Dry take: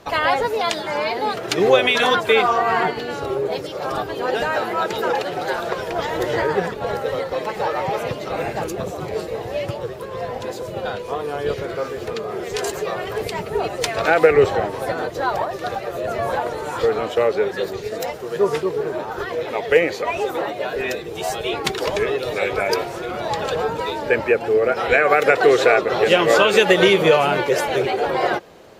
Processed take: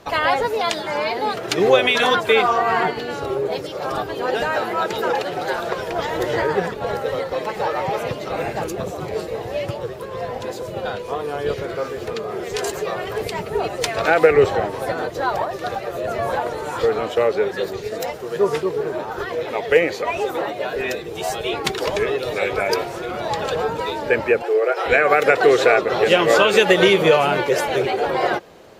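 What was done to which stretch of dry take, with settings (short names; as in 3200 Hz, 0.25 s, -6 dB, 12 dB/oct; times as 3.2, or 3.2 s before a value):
24.42–24.86 elliptic high-pass 350 Hz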